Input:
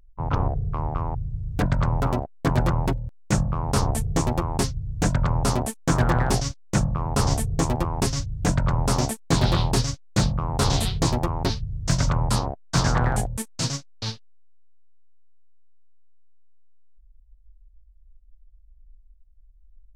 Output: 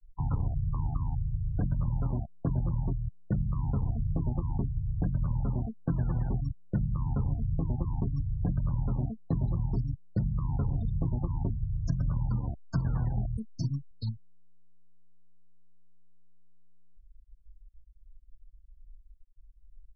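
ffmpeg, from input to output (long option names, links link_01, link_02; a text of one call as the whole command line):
ffmpeg -i in.wav -filter_complex "[0:a]asettb=1/sr,asplit=3[link_01][link_02][link_03];[link_01]atrim=end=12.274[link_04];[link_02]atrim=start=12.27:end=13.91,asetpts=PTS-STARTPTS,afade=type=in:duration=0.004:curve=qsin,afade=type=out:start_time=1.636:duration=0.004:curve=qsin,asplit=2[link_05][link_06];[link_06]adelay=15,volume=-13dB[link_07];[link_05][link_07]amix=inputs=2:normalize=0,atrim=end_sample=72324[link_08];[link_03]atrim=start=13.906[link_09];[link_04][link_08]acrossfade=duration=0.004:curve1=hsin:curve2=qsin[link_10];[link_10][link_09]acrossfade=duration=0.004:curve1=qsin:curve2=hsin,acrossover=split=230[link_11][link_12];[link_12]acompressor=threshold=-43dB:ratio=2.5[link_13];[link_11][link_13]amix=inputs=2:normalize=0,afftfilt=real='re*gte(hypot(re,im),0.0316)':imag='im*gte(hypot(re,im),0.0316)':win_size=1024:overlap=0.75,acompressor=threshold=-25dB:ratio=6" out.wav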